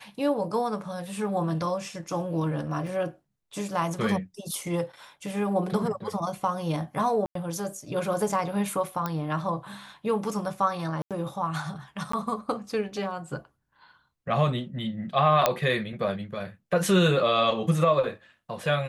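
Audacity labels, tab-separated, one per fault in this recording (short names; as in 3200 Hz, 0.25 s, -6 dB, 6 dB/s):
2.870000	2.870000	gap 2.1 ms
7.260000	7.350000	gap 93 ms
9.060000	9.060000	pop -15 dBFS
11.020000	11.110000	gap 87 ms
12.120000	12.130000	gap 14 ms
15.460000	15.460000	pop -5 dBFS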